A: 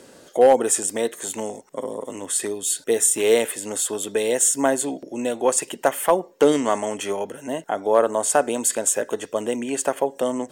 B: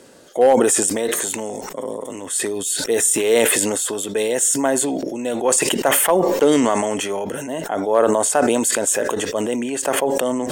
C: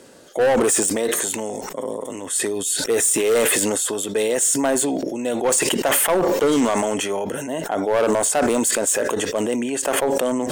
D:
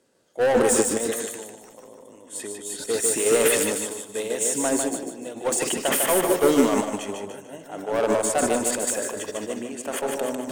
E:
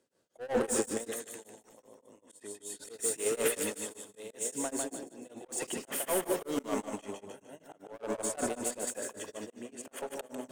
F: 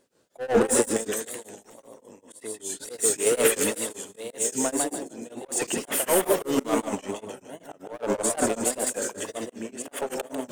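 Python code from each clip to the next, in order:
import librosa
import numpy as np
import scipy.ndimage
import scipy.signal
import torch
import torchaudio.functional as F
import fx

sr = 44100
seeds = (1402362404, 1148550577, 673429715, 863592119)

y1 = fx.sustainer(x, sr, db_per_s=21.0)
y2 = np.clip(y1, -10.0 ** (-13.5 / 20.0), 10.0 ** (-13.5 / 20.0))
y3 = fx.echo_feedback(y2, sr, ms=150, feedback_pct=55, wet_db=-4)
y3 = fx.upward_expand(y3, sr, threshold_db=-26.0, expansion=2.5)
y4 = fx.auto_swell(y3, sr, attack_ms=150.0)
y4 = y4 * np.abs(np.cos(np.pi * 5.2 * np.arange(len(y4)) / sr))
y4 = y4 * 10.0 ** (-8.5 / 20.0)
y5 = fx.wow_flutter(y4, sr, seeds[0], rate_hz=2.1, depth_cents=110.0)
y5 = y5 * 10.0 ** (9.0 / 20.0)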